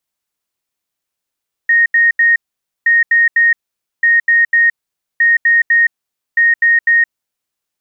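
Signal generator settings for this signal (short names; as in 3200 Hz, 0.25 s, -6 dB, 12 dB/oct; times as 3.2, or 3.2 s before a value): beep pattern sine 1860 Hz, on 0.17 s, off 0.08 s, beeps 3, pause 0.50 s, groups 5, -7 dBFS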